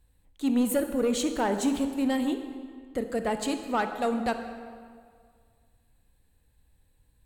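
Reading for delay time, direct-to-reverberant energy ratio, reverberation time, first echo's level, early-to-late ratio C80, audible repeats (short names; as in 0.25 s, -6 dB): none, 7.0 dB, 2.0 s, none, 9.0 dB, none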